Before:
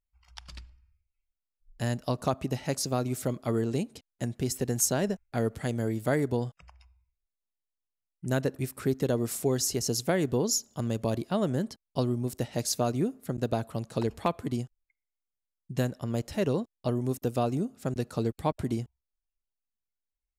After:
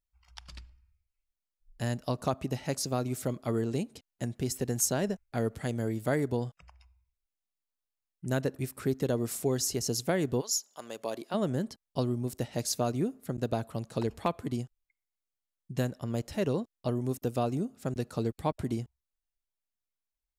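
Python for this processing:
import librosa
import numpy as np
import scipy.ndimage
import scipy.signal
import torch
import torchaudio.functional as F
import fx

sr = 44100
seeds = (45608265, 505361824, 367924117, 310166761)

y = fx.highpass(x, sr, hz=fx.line((10.4, 1100.0), (11.33, 320.0)), slope=12, at=(10.4, 11.33), fade=0.02)
y = y * librosa.db_to_amplitude(-2.0)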